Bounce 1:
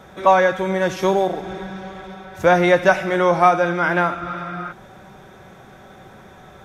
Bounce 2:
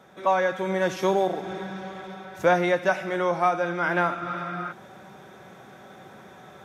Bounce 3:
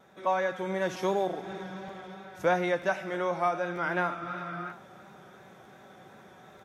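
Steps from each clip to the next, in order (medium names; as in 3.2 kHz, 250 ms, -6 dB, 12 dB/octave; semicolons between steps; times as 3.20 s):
high-pass 140 Hz 12 dB/octave; gain riding within 4 dB 0.5 s; trim -6.5 dB
vibrato 2.8 Hz 34 cents; delay 687 ms -22 dB; crackling interface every 0.94 s, samples 512, repeat, from 0.93 s; trim -5.5 dB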